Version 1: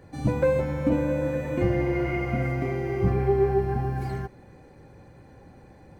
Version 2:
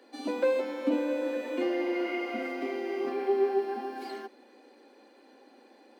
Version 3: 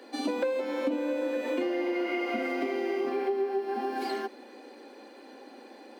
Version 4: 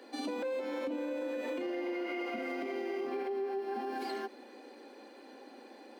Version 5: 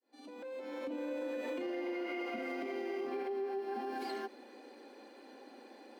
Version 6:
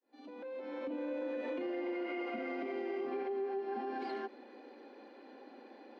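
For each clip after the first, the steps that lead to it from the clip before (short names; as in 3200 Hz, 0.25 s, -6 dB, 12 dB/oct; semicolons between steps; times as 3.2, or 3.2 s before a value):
steep high-pass 230 Hz 96 dB/oct; band shelf 3700 Hz +8.5 dB 1.1 oct; gain -3.5 dB
compressor 6:1, threshold -35 dBFS, peak gain reduction 12.5 dB; gain +8 dB
limiter -25.5 dBFS, peak gain reduction 8.5 dB; gain -3.5 dB
opening faded in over 1.11 s; gain -2 dB
air absorption 210 m; gain +1 dB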